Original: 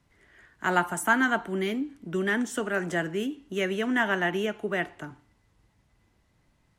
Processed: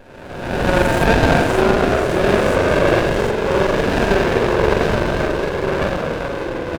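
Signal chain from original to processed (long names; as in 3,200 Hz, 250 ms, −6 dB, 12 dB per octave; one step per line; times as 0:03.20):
peak hold with a rise ahead of every peak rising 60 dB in 1.44 s
delay with pitch and tempo change per echo 436 ms, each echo −2 semitones, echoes 3
high-pass filter 240 Hz 24 dB per octave
parametric band 720 Hz +6 dB 2.6 octaves
comb filter 1.9 ms, depth 58%
spring reverb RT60 1.4 s, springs 42 ms, chirp 30 ms, DRR −2.5 dB
windowed peak hold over 33 samples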